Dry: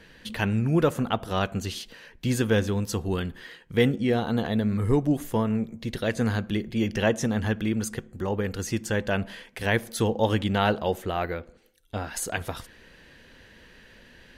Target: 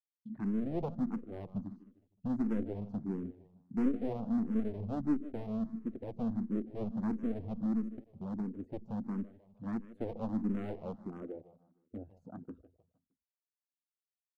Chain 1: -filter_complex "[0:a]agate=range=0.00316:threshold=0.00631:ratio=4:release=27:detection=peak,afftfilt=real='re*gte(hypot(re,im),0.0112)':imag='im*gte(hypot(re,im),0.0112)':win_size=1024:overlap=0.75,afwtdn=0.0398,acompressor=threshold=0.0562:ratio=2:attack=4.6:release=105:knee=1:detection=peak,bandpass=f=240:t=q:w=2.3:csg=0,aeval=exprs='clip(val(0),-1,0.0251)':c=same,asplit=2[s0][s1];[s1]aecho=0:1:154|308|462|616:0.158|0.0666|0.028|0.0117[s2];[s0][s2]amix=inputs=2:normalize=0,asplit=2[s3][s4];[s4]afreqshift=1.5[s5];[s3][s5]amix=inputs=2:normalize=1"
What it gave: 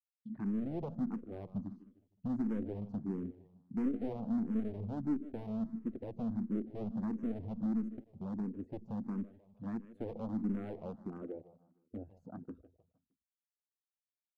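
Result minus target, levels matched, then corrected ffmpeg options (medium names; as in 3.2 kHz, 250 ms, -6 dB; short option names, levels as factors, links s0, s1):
compression: peak gain reduction +6 dB
-filter_complex "[0:a]agate=range=0.00316:threshold=0.00631:ratio=4:release=27:detection=peak,afftfilt=real='re*gte(hypot(re,im),0.0112)':imag='im*gte(hypot(re,im),0.0112)':win_size=1024:overlap=0.75,afwtdn=0.0398,bandpass=f=240:t=q:w=2.3:csg=0,aeval=exprs='clip(val(0),-1,0.0251)':c=same,asplit=2[s0][s1];[s1]aecho=0:1:154|308|462|616:0.158|0.0666|0.028|0.0117[s2];[s0][s2]amix=inputs=2:normalize=0,asplit=2[s3][s4];[s4]afreqshift=1.5[s5];[s3][s5]amix=inputs=2:normalize=1"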